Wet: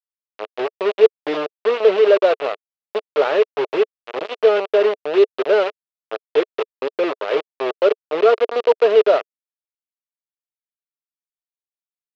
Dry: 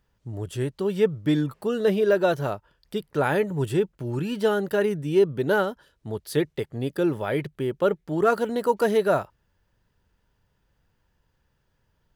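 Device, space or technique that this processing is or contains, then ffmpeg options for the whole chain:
hand-held game console: -af "acrusher=bits=3:mix=0:aa=0.000001,highpass=490,equalizer=f=630:t=q:w=4:g=7,equalizer=f=1.2k:t=q:w=4:g=5,equalizer=f=2.7k:t=q:w=4:g=5,lowpass=f=4k:w=0.5412,lowpass=f=4k:w=1.3066,equalizer=f=440:t=o:w=0.7:g=15,volume=-2.5dB"

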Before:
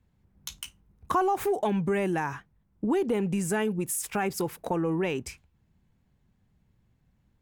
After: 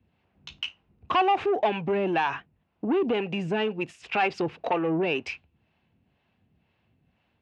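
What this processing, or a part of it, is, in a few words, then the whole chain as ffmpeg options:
guitar amplifier with harmonic tremolo: -filter_complex "[0:a]acrossover=split=450[a][b];[a]aeval=exprs='val(0)*(1-0.7/2+0.7/2*cos(2*PI*2*n/s))':c=same[c];[b]aeval=exprs='val(0)*(1-0.7/2-0.7/2*cos(2*PI*2*n/s))':c=same[d];[c][d]amix=inputs=2:normalize=0,asoftclip=type=tanh:threshold=-26.5dB,highpass=110,equalizer=f=130:t=q:w=4:g=-6,equalizer=f=190:t=q:w=4:g=-5,equalizer=f=690:t=q:w=4:g=5,equalizer=f=2.7k:t=q:w=4:g=10,lowpass=f=4.3k:w=0.5412,lowpass=f=4.3k:w=1.3066,volume=7.5dB"

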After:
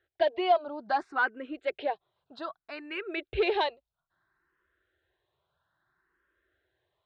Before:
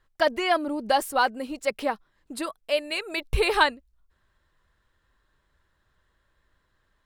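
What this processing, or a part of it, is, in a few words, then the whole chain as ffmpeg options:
barber-pole phaser into a guitar amplifier: -filter_complex "[0:a]asplit=2[a][b];[b]afreqshift=0.61[c];[a][c]amix=inputs=2:normalize=1,asoftclip=type=tanh:threshold=-16.5dB,highpass=87,equalizer=f=220:t=q:w=4:g=-10,equalizer=f=370:t=q:w=4:g=10,equalizer=f=700:t=q:w=4:g=8,equalizer=f=1.5k:t=q:w=4:g=7,equalizer=f=3.7k:t=q:w=4:g=4,lowpass=f=3.9k:w=0.5412,lowpass=f=3.9k:w=1.3066,volume=-5dB"

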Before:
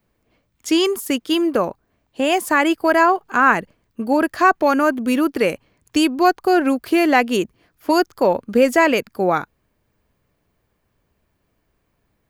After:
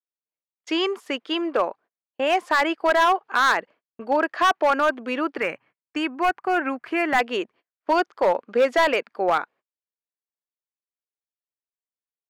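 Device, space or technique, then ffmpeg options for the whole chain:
walkie-talkie: -filter_complex "[0:a]highpass=510,lowpass=2.8k,asoftclip=type=hard:threshold=-13dB,agate=range=-36dB:threshold=-47dB:ratio=16:detection=peak,asettb=1/sr,asplit=3[a][b][c];[a]atrim=end=5.384[d];[b]atrim=start=5.38:end=7.19,asetpts=PTS-STARTPTS,afade=t=in:d=0.004:c=qsin,afade=t=out:st=1.806:d=0.004:c=qsin,equalizer=f=125:t=o:w=1:g=11,equalizer=f=500:t=o:w=1:g=-7,equalizer=f=2k:t=o:w=1:g=4,equalizer=f=4k:t=o:w=1:g=-10[e];[c]atrim=start=7.186[f];[d][e]acrossfade=d=0.004:c1=hsin:c2=qsin[g];[g][f]acrossfade=d=0.004:c1=qsin:c2=hsin"

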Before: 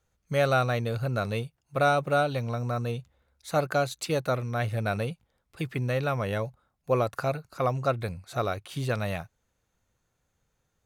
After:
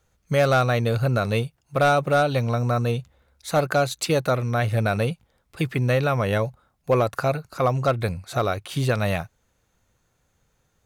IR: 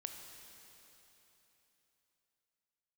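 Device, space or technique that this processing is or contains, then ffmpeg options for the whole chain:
clipper into limiter: -af "asoftclip=type=hard:threshold=-17dB,alimiter=limit=-19.5dB:level=0:latency=1:release=140,volume=7.5dB"

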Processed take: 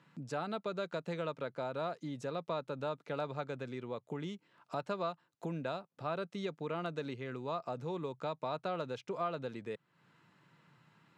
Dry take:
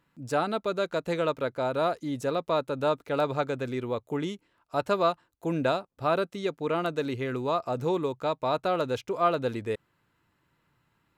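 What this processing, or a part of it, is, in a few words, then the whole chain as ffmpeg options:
jukebox: -af "lowpass=6.7k,lowshelf=f=190:t=q:w=1.5:g=9.5,acompressor=threshold=-45dB:ratio=3,highpass=f=180:w=0.5412,highpass=f=180:w=1.3066,volume=5.5dB"

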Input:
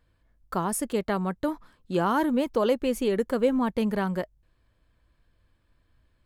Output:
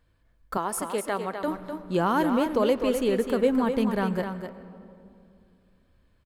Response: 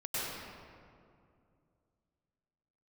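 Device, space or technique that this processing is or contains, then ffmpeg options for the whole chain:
saturated reverb return: -filter_complex "[0:a]asplit=2[a][b];[1:a]atrim=start_sample=2205[c];[b][c]afir=irnorm=-1:irlink=0,asoftclip=type=tanh:threshold=-19.5dB,volume=-17dB[d];[a][d]amix=inputs=2:normalize=0,asettb=1/sr,asplit=3[e][f][g];[e]atrim=end=0.574[h];[f]atrim=start=0.57:end=1.48,asetpts=PTS-STARTPTS,afade=t=in:d=0.004:c=qsin,afade=t=out:st=0.906:d=0.004:c=qsin,bass=f=250:g=-15,treble=f=4k:g=-2[i];[g]atrim=start=1.476[j];[h][i]acrossfade=d=0.004:c1=hsin:c2=qsin[k];[k][j]acrossfade=d=0.004:c1=qsin:c2=hsin,aecho=1:1:253:0.422"

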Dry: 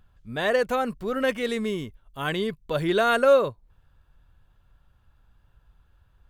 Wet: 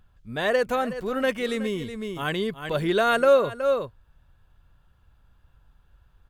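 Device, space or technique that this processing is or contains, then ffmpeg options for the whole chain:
ducked delay: -filter_complex "[0:a]asplit=3[a][b][c];[b]adelay=370,volume=-4.5dB[d];[c]apad=whole_len=294121[e];[d][e]sidechaincompress=threshold=-40dB:ratio=3:attack=21:release=188[f];[a][f]amix=inputs=2:normalize=0"

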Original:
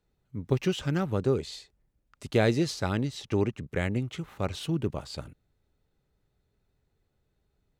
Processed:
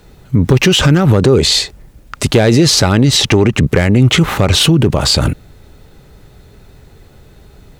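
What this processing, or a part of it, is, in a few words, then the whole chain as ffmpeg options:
loud club master: -af "acompressor=threshold=-28dB:ratio=3,asoftclip=type=hard:threshold=-22dB,alimiter=level_in=34dB:limit=-1dB:release=50:level=0:latency=1,volume=-1dB"

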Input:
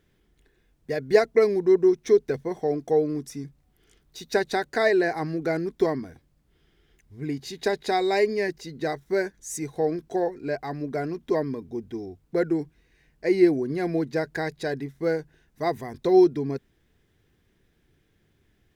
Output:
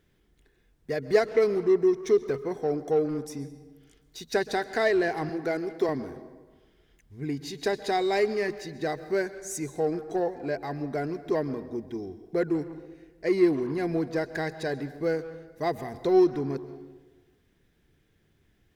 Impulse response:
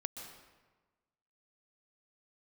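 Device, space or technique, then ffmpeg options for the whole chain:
saturated reverb return: -filter_complex "[0:a]asettb=1/sr,asplit=3[a][b][c];[a]atrim=end=5.294[d];[b]atrim=start=5.29:end=5.89,asetpts=PTS-STARTPTS,afade=t=in:d=0.004:c=qsin,afade=t=out:st=0.596:d=0.004:c=qsin,highpass=260[e];[c]atrim=start=5.886[f];[d][e]acrossfade=d=0.004:c1=hsin:c2=qsin[g];[g][f]acrossfade=d=0.004:c1=qsin:c2=hsin,asplit=2[h][i];[1:a]atrim=start_sample=2205[j];[i][j]afir=irnorm=-1:irlink=0,asoftclip=type=tanh:threshold=-26dB,volume=-3.5dB[k];[h][k]amix=inputs=2:normalize=0,volume=-4.5dB"

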